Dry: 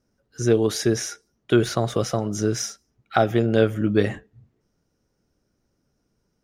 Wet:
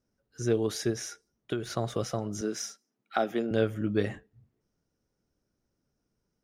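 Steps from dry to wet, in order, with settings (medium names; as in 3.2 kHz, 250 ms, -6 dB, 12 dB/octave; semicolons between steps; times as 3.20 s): 0.90–1.70 s: compression 10:1, threshold -20 dBFS, peak gain reduction 9 dB; 2.41–3.51 s: Chebyshev high-pass 210 Hz, order 3; trim -8 dB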